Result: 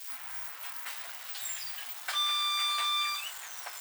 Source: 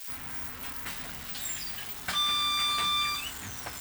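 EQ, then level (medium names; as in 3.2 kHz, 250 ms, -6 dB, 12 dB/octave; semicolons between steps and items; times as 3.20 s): high-pass 610 Hz 24 dB/octave; -2.0 dB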